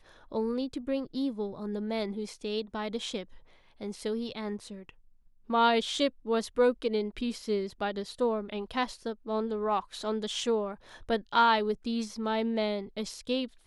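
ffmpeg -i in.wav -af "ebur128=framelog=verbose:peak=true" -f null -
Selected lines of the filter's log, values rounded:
Integrated loudness:
  I:         -31.1 LUFS
  Threshold: -41.5 LUFS
Loudness range:
  LRA:         6.3 LU
  Threshold: -51.4 LUFS
  LRA low:   -35.8 LUFS
  LRA high:  -29.5 LUFS
True peak:
  Peak:      -12.6 dBFS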